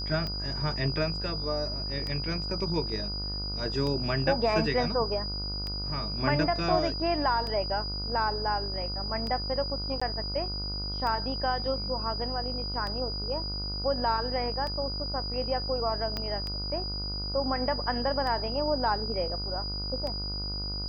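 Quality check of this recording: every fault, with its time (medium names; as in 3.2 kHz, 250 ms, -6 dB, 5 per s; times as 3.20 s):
buzz 50 Hz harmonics 30 -36 dBFS
tick 33 1/3 rpm -22 dBFS
whine 4.9 kHz -34 dBFS
10.00–10.02 s: dropout 15 ms
16.17 s: pop -18 dBFS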